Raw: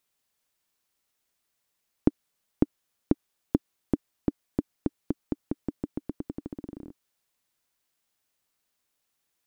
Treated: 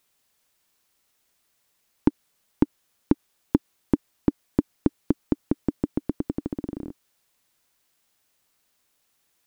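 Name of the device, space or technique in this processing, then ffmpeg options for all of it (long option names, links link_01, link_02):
soft clipper into limiter: -af "asoftclip=type=tanh:threshold=-10dB,alimiter=limit=-13.5dB:level=0:latency=1:release=96,volume=8dB"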